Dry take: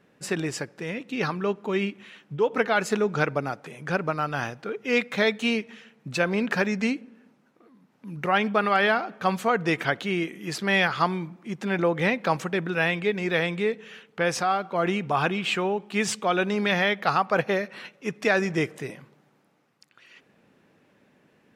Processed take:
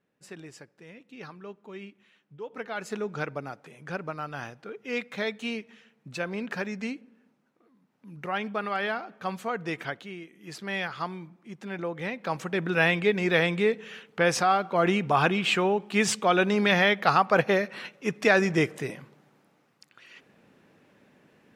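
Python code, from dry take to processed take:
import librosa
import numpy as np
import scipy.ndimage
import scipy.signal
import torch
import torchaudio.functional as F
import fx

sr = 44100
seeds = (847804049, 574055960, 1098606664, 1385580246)

y = fx.gain(x, sr, db=fx.line((2.41, -16.0), (3.0, -8.0), (9.86, -8.0), (10.28, -17.0), (10.51, -9.5), (12.12, -9.5), (12.75, 1.5)))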